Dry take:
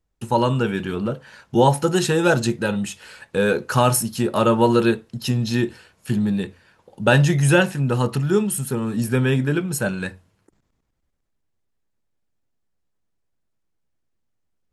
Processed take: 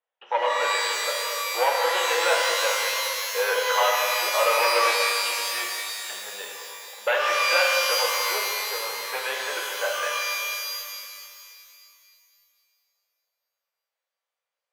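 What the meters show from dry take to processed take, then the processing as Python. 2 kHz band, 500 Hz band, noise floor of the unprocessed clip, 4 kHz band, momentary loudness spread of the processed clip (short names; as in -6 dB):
+2.5 dB, -4.5 dB, -73 dBFS, +7.0 dB, 13 LU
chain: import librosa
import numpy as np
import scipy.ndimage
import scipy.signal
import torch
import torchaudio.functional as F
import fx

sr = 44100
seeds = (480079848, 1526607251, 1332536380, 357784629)

y = np.clip(x, -10.0 ** (-14.5 / 20.0), 10.0 ** (-14.5 / 20.0))
y = scipy.signal.sosfilt(scipy.signal.cheby1(4, 1.0, [510.0, 3400.0], 'bandpass', fs=sr, output='sos'), y)
y = fx.rev_shimmer(y, sr, seeds[0], rt60_s=2.4, semitones=12, shimmer_db=-2, drr_db=-1.0)
y = F.gain(torch.from_numpy(y), -2.0).numpy()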